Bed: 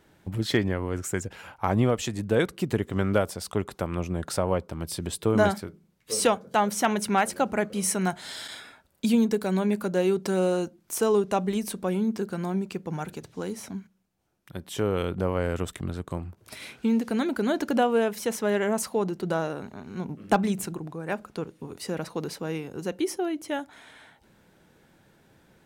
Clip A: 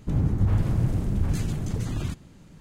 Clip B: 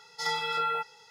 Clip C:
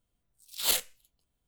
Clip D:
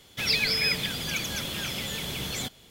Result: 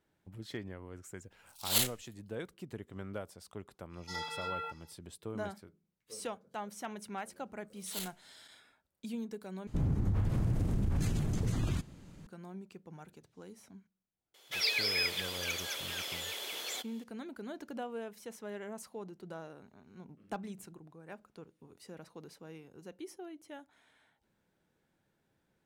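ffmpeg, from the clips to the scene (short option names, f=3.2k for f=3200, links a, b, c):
-filter_complex "[3:a]asplit=2[a][b];[0:a]volume=-18dB[c];[1:a]acompressor=threshold=-23dB:ratio=6:attack=3.2:release=140:knee=1:detection=peak[d];[4:a]highpass=f=400:w=0.5412,highpass=f=400:w=1.3066[e];[c]asplit=2[f][g];[f]atrim=end=9.674[h];[d]atrim=end=2.6,asetpts=PTS-STARTPTS,volume=-3dB[i];[g]atrim=start=12.266[j];[a]atrim=end=1.47,asetpts=PTS-STARTPTS,volume=-2.5dB,afade=t=in:d=0.004:c=hsin,afade=t=out:st=1.466:d=0.004:c=hsin,adelay=1070[k];[2:a]atrim=end=1.1,asetpts=PTS-STARTPTS,volume=-10dB,afade=t=in:d=0.1,afade=t=out:st=1:d=0.1,adelay=171549S[l];[b]atrim=end=1.47,asetpts=PTS-STARTPTS,volume=-14.5dB,afade=t=in:d=0.004:c=hsin,afade=t=out:st=1.466:d=0.004:c=hsin,adelay=7280[m];[e]atrim=end=2.7,asetpts=PTS-STARTPTS,volume=-6dB,afade=t=in:d=0.004:c=hsin,afade=t=out:st=2.696:d=0.004:c=hsin,adelay=14340[n];[h][i]acrossfade=d=0.004:c1=hsin:c2=hsin[o];[o][j]acrossfade=d=0.004:c1=hsin:c2=hsin[p];[p][k][l][m][n]amix=inputs=5:normalize=0"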